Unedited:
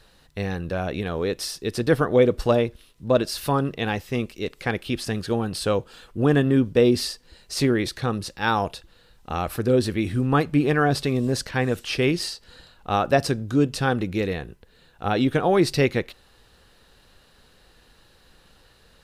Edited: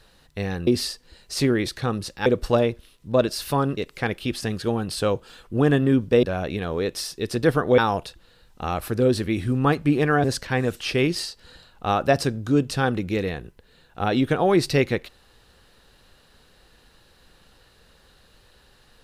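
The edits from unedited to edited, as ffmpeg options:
-filter_complex "[0:a]asplit=7[a][b][c][d][e][f][g];[a]atrim=end=0.672[h];[b]atrim=start=6.868:end=8.462[i];[c]atrim=start=2.218:end=3.732[j];[d]atrim=start=4.408:end=6.872[k];[e]atrim=start=0.668:end=2.222[l];[f]atrim=start=8.458:end=10.922[m];[g]atrim=start=11.278[n];[h][i]acrossfade=d=0.004:c1=hsin:c2=hsin[o];[o][j]acrossfade=d=0.004:c1=hsin:c2=hsin[p];[p][k]acrossfade=d=0.004:c1=hsin:c2=hsin[q];[q][l]acrossfade=d=0.004:c1=hsin:c2=hsin[r];[r][m]acrossfade=d=0.004:c1=hsin:c2=hsin[s];[s][n]acrossfade=d=0.004:c1=hsin:c2=hsin"

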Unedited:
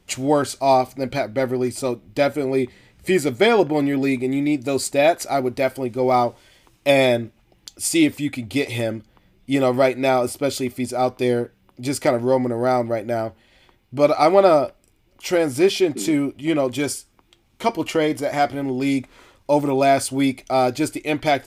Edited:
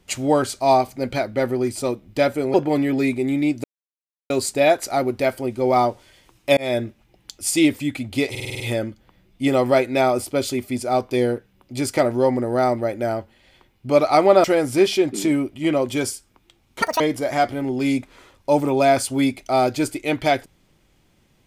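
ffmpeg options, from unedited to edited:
-filter_complex "[0:a]asplit=13[a][b][c][d][e][f][g][h][i][j][k][l][m];[a]atrim=end=2.542[n];[b]atrim=start=3.578:end=4.68,asetpts=PTS-STARTPTS,afade=t=out:st=1.098:d=0.004:c=hsin,apad=pad_dur=0.66[o];[c]atrim=start=4.68:end=6.95,asetpts=PTS-STARTPTS,afade=t=in:d=0.004:c=hsin,afade=t=out:st=2.266:d=0.004:c=hsin[p];[d]atrim=start=6.95:end=8.732,asetpts=PTS-STARTPTS,afade=t=in:d=0.25[q];[e]atrim=start=8.678:end=8.732[r];[f]atrim=start=8.678:end=8.732[s];[g]atrim=start=8.678:end=8.732[t];[h]atrim=start=8.678:end=8.732[u];[i]atrim=start=8.678:end=8.732[v];[j]atrim=start=8.678:end=14.522[w];[k]atrim=start=15.268:end=17.654[x];[l]atrim=start=17.65:end=18.01,asetpts=PTS-STARTPTS,asetrate=87318,aresample=44100,atrim=end_sample=8018,asetpts=PTS-STARTPTS[y];[m]atrim=start=18.006[z];[o][p][q]concat=n=3:v=0:a=1[aa];[n][aa]acrossfade=d=0.004:c1=hsin:c2=hsin[ab];[ab][r]acrossfade=d=0.004:c1=hsin:c2=hsin[ac];[ac][s]acrossfade=d=0.004:c1=hsin:c2=hsin[ad];[ad][t]acrossfade=d=0.004:c1=hsin:c2=hsin[ae];[ae][u]acrossfade=d=0.004:c1=hsin:c2=hsin[af];[af][v]acrossfade=d=0.004:c1=hsin:c2=hsin[ag];[ag][w]acrossfade=d=0.004:c1=hsin:c2=hsin[ah];[ah][x]acrossfade=d=0.004:c1=hsin:c2=hsin[ai];[ai][y]acrossfade=d=0.004:c1=hsin:c2=hsin[aj];[aj][z]acrossfade=d=0.004:c1=hsin:c2=hsin"

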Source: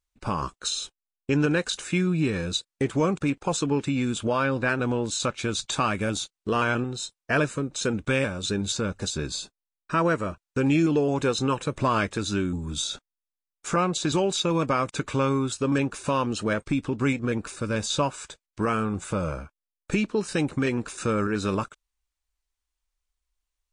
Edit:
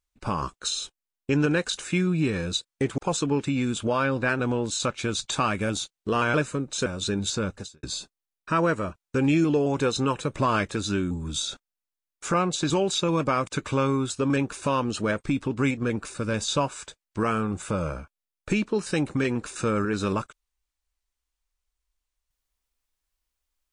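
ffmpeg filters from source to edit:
-filter_complex "[0:a]asplit=5[a][b][c][d][e];[a]atrim=end=2.982[f];[b]atrim=start=3.378:end=6.742[g];[c]atrim=start=7.368:end=7.892[h];[d]atrim=start=8.278:end=9.25,asetpts=PTS-STARTPTS,afade=t=out:st=0.662:d=0.31:c=qua[i];[e]atrim=start=9.25,asetpts=PTS-STARTPTS,afade=t=in:d=0.004:c=hsin[j];[f][g]acrossfade=d=0.004:c1=hsin:c2=hsin[k];[k][h]acrossfade=d=0.004:c1=hsin:c2=hsin[l];[i][j]concat=n=2:v=0:a=1[m];[l][m]acrossfade=d=0.004:c1=hsin:c2=hsin"

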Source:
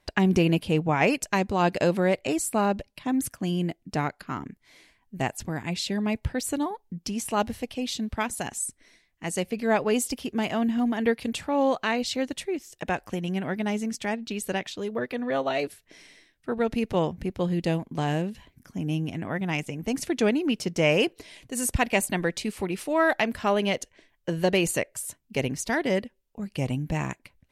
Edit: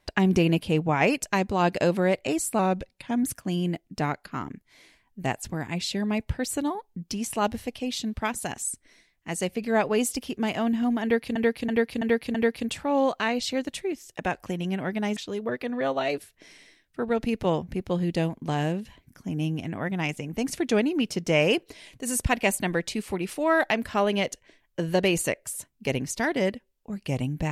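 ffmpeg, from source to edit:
-filter_complex "[0:a]asplit=8[a][b][c][d][e][f][g][h];[a]atrim=end=2.594[i];[b]atrim=start=2.59:end=3.19,asetpts=PTS-STARTPTS,asetrate=41013,aresample=44100[j];[c]atrim=start=3.186:end=11.312[k];[d]atrim=start=10.978:end=11.312[l];[e]atrim=start=10.978:end=11.312[m];[f]atrim=start=10.978:end=11.312[n];[g]atrim=start=10.978:end=13.802[o];[h]atrim=start=14.658[p];[i][j]acrossfade=d=0.004:c1=hsin:c2=hsin[q];[q][k]acrossfade=d=0.004:c1=hsin:c2=hsin[r];[r][l]acrossfade=d=0.004:c1=hsin:c2=hsin[s];[s][m]acrossfade=d=0.004:c1=hsin:c2=hsin[t];[t][n]acrossfade=d=0.004:c1=hsin:c2=hsin[u];[u][o]acrossfade=d=0.004:c1=hsin:c2=hsin[v];[v][p]acrossfade=d=0.004:c1=hsin:c2=hsin"

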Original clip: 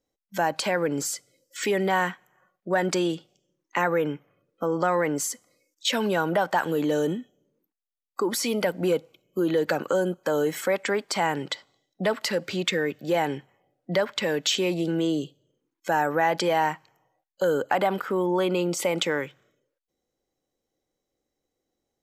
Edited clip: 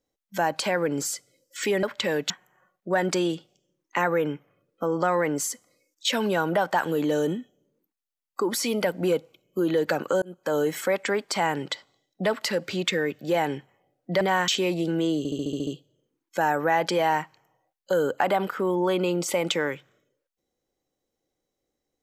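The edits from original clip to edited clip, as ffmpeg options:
-filter_complex "[0:a]asplit=13[a][b][c][d][e][f][g][h][i][j][k][l][m];[a]atrim=end=1.832[n];[b]atrim=start=14.008:end=14.482[o];[c]atrim=start=2.098:end=10.02,asetpts=PTS-STARTPTS,afade=t=out:st=7.918:d=0.004:c=hsin[p];[d]atrim=start=10.02:end=14.012,asetpts=PTS-STARTPTS,afade=t=in:d=0.32[q];[e]atrim=start=1.828:end=2.102[r];[f]atrim=start=14.478:end=15.252[s];[g]atrim=start=15.178:end=15.252[t];[h]atrim=start=15.178:end=15.252[u];[i]atrim=start=15.178:end=15.252[v];[j]atrim=start=15.178:end=15.252[w];[k]atrim=start=15.178:end=15.252[x];[l]atrim=start=15.178:end=15.252[y];[m]atrim=start=15.178[z];[n][o]acrossfade=d=0.004:c1=hsin:c2=hsin[aa];[p][q]concat=n=2:v=0:a=1[ab];[aa][ab]acrossfade=d=0.004:c1=hsin:c2=hsin[ac];[ac][r]acrossfade=d=0.004:c1=hsin:c2=hsin[ad];[ad][s]acrossfade=d=0.004:c1=hsin:c2=hsin[ae];[ae][t]acrossfade=d=0.004:c1=hsin:c2=hsin[af];[af][u]acrossfade=d=0.004:c1=hsin:c2=hsin[ag];[ag][v]acrossfade=d=0.004:c1=hsin:c2=hsin[ah];[ah][w]acrossfade=d=0.004:c1=hsin:c2=hsin[ai];[ai][x]acrossfade=d=0.004:c1=hsin:c2=hsin[aj];[aj][y]acrossfade=d=0.004:c1=hsin:c2=hsin[ak];[ak][z]acrossfade=d=0.004:c1=hsin:c2=hsin"

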